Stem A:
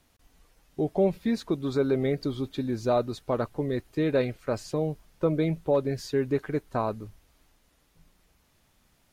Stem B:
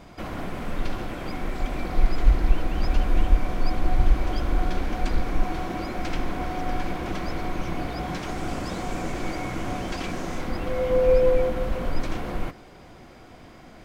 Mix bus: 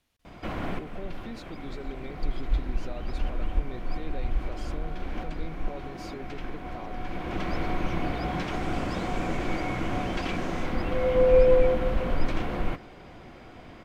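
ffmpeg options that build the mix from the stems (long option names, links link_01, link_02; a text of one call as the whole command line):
ffmpeg -i stem1.wav -i stem2.wav -filter_complex "[0:a]alimiter=limit=-23dB:level=0:latency=1,volume=-11dB,asplit=2[link_01][link_02];[1:a]highshelf=frequency=2900:gain=-9.5,adelay=250,volume=0.5dB[link_03];[link_02]apad=whole_len=621724[link_04];[link_03][link_04]sidechaincompress=threshold=-48dB:ratio=6:attack=7:release=752[link_05];[link_01][link_05]amix=inputs=2:normalize=0,equalizer=frequency=2900:width_type=o:width=1.4:gain=5.5" out.wav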